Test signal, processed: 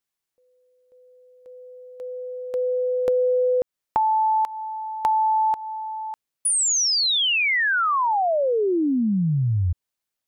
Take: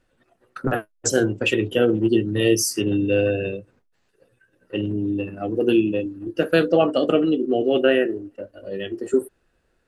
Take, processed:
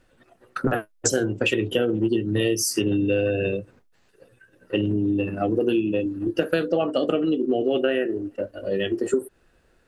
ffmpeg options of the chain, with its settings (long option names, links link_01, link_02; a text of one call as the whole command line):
ffmpeg -i in.wav -af "acompressor=threshold=-25dB:ratio=6,volume=6dB" out.wav